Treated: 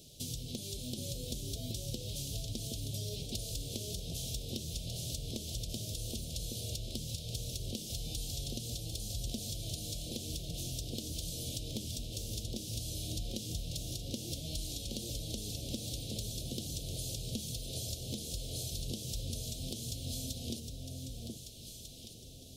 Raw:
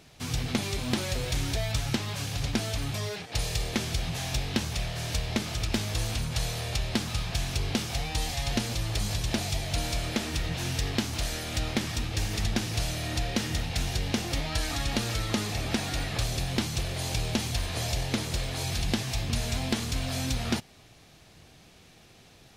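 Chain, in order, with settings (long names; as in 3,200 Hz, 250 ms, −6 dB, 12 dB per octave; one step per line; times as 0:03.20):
elliptic band-stop filter 570–3,200 Hz, stop band 60 dB
high-shelf EQ 5,300 Hz +10 dB
downward compressor 10 to 1, threshold −36 dBFS, peak gain reduction 14.5 dB
delay that swaps between a low-pass and a high-pass 773 ms, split 960 Hz, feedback 52%, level −2 dB
level −1.5 dB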